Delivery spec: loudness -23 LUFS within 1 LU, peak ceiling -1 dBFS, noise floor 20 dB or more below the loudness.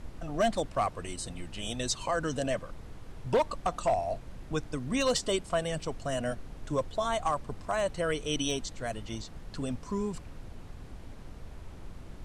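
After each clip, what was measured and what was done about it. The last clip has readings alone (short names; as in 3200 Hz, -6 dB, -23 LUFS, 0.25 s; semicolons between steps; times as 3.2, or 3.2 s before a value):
clipped 0.3%; flat tops at -20.0 dBFS; noise floor -47 dBFS; noise floor target -53 dBFS; loudness -32.5 LUFS; peak -20.0 dBFS; loudness target -23.0 LUFS
-> clip repair -20 dBFS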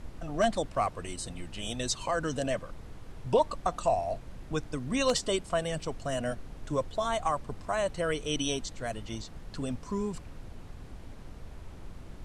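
clipped 0.0%; noise floor -47 dBFS; noise floor target -52 dBFS
-> noise print and reduce 6 dB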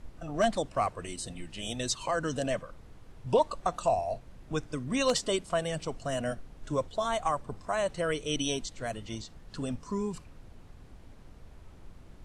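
noise floor -52 dBFS; loudness -32.0 LUFS; peak -11.0 dBFS; loudness target -23.0 LUFS
-> gain +9 dB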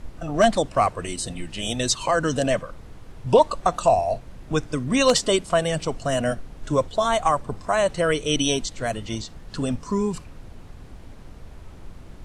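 loudness -23.0 LUFS; peak -2.0 dBFS; noise floor -43 dBFS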